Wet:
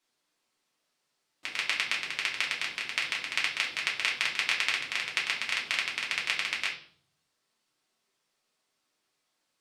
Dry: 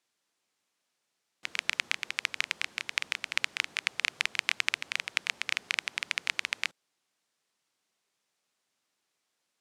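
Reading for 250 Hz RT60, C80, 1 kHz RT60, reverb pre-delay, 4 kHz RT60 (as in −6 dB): 0.85 s, 13.0 dB, 0.50 s, 3 ms, 0.45 s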